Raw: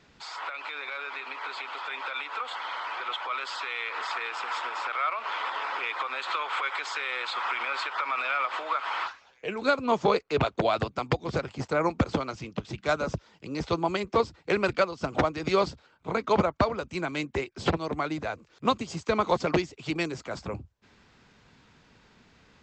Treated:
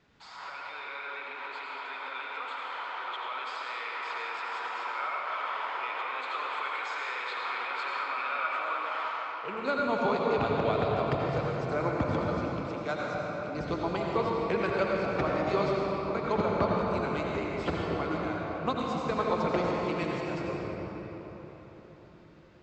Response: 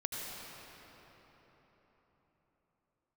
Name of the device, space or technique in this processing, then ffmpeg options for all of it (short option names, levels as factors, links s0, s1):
swimming-pool hall: -filter_complex "[1:a]atrim=start_sample=2205[s0];[0:a][s0]afir=irnorm=-1:irlink=0,highshelf=f=3900:g=-7.5,asettb=1/sr,asplit=3[s1][s2][s3];[s1]atrim=end=12.694[s4];[s2]atrim=start=12.69:end=13.55,asetpts=PTS-STARTPTS,afade=t=in:d=0.004:c=qsin,afade=t=out:st=0.856:d=0.004:c=qsin,highpass=f=230:p=1[s5];[s3]atrim=start=13.546[s6];[s4][s5]acrossfade=d=0.004:c1=hsin:c2=qsin[s7];[s7][s6]acrossfade=d=0.004:c1=qsin:c2=hsin,volume=0.596"